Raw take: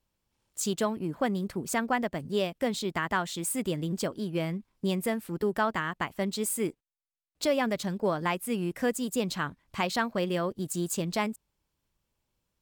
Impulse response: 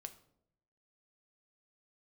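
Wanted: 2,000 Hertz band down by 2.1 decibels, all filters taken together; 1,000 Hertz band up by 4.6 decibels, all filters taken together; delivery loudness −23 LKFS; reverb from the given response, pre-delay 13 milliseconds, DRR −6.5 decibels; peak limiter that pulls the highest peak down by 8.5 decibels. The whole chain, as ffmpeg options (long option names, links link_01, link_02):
-filter_complex "[0:a]equalizer=frequency=1000:width_type=o:gain=7,equalizer=frequency=2000:width_type=o:gain=-5.5,alimiter=limit=-20.5dB:level=0:latency=1,asplit=2[link_01][link_02];[1:a]atrim=start_sample=2205,adelay=13[link_03];[link_02][link_03]afir=irnorm=-1:irlink=0,volume=11.5dB[link_04];[link_01][link_04]amix=inputs=2:normalize=0,volume=1.5dB"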